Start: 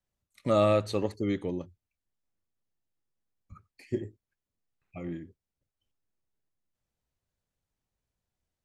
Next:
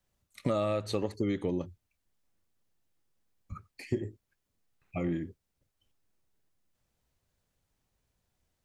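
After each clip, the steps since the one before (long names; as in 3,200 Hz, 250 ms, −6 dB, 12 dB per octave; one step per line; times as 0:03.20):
downward compressor 10 to 1, threshold −34 dBFS, peak gain reduction 15 dB
level +7.5 dB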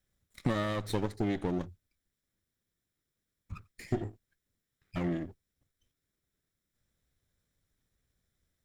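lower of the sound and its delayed copy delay 0.54 ms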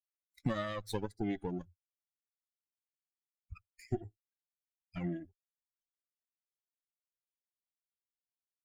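spectral dynamics exaggerated over time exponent 2
level −1 dB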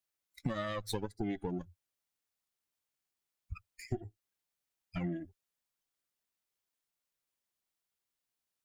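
downward compressor 2.5 to 1, threshold −43 dBFS, peak gain reduction 10.5 dB
level +7 dB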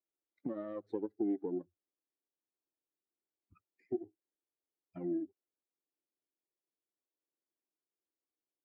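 four-pole ladder band-pass 370 Hz, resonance 55%
level +9.5 dB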